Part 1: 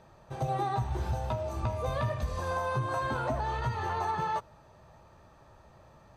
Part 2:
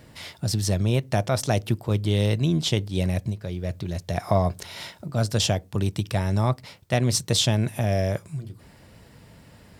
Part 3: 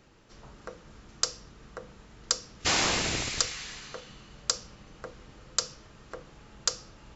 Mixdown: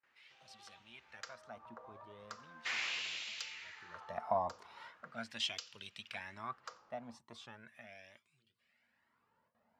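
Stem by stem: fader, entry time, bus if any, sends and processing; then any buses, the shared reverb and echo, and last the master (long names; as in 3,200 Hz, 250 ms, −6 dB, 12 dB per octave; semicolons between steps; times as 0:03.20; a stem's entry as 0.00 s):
−11.5 dB, 0.00 s, no send, no echo send, automatic ducking −6 dB, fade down 1.80 s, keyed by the second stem
0:03.54 −13.5 dB → 0:04.12 −1 dB → 0:06.22 −1 dB → 0:06.94 −10 dB, 0.00 s, no send, no echo send, parametric band 230 Hz +14.5 dB 0.23 octaves; flanger whose copies keep moving one way rising 1.1 Hz
−5.0 dB, 0.00 s, no send, echo send −22 dB, hard clipping −18.5 dBFS, distortion −12 dB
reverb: not used
echo: single-tap delay 89 ms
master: noise gate with hold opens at −53 dBFS; auto-filter band-pass sine 0.39 Hz 910–3,000 Hz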